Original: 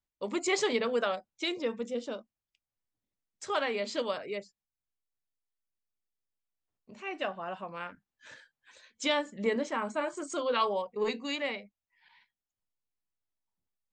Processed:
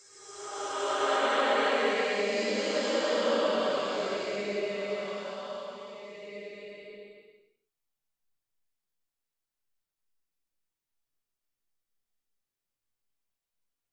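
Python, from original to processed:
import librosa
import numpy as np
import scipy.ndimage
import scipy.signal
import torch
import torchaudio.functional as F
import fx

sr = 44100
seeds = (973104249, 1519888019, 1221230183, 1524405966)

y = fx.reverse_delay(x, sr, ms=254, wet_db=-8.0)
y = fx.paulstretch(y, sr, seeds[0], factor=4.2, window_s=0.5, from_s=3.25)
y = F.gain(torch.from_numpy(y), 4.0).numpy()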